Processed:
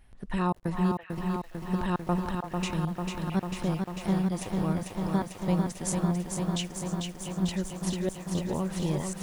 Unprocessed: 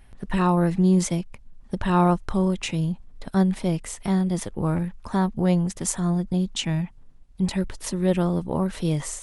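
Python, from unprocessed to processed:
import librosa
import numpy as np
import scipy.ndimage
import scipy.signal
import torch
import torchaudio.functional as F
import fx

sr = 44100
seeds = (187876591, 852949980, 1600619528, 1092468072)

y = fx.step_gate(x, sr, bpm=115, pattern='xxxx.xx..xx', floor_db=-60.0, edge_ms=4.5)
y = fx.echo_stepped(y, sr, ms=334, hz=820.0, octaves=1.4, feedback_pct=70, wet_db=-6.5)
y = fx.echo_crushed(y, sr, ms=446, feedback_pct=80, bits=8, wet_db=-4.5)
y = F.gain(torch.from_numpy(y), -6.5).numpy()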